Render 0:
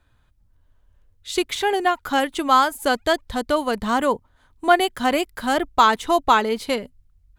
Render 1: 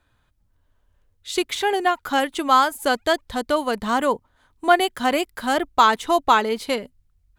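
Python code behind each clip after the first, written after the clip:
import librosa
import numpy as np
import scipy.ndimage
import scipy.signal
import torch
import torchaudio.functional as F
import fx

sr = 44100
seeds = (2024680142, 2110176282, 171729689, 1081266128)

y = fx.low_shelf(x, sr, hz=130.0, db=-6.5)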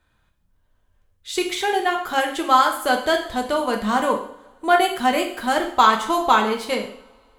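y = fx.rev_double_slope(x, sr, seeds[0], early_s=0.58, late_s=2.5, knee_db=-26, drr_db=1.5)
y = y * librosa.db_to_amplitude(-1.5)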